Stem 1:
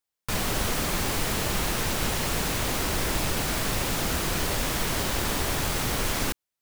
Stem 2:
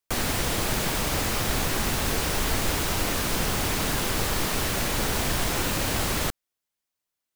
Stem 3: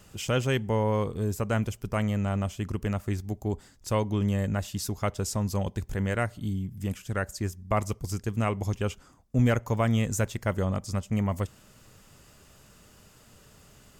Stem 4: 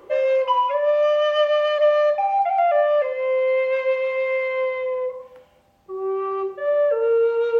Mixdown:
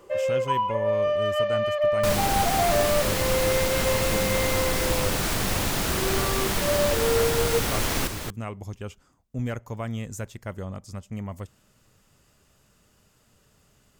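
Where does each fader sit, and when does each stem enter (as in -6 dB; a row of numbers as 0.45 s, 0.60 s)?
+0.5 dB, -8.0 dB, -7.0 dB, -5.5 dB; 1.75 s, 2.00 s, 0.00 s, 0.00 s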